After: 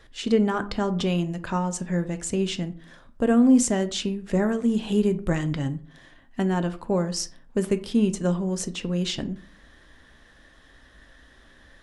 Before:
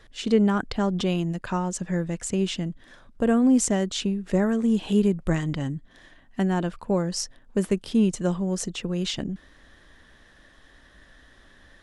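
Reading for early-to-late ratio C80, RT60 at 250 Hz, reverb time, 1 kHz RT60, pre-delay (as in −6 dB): 20.5 dB, 0.50 s, 0.45 s, 0.45 s, 5 ms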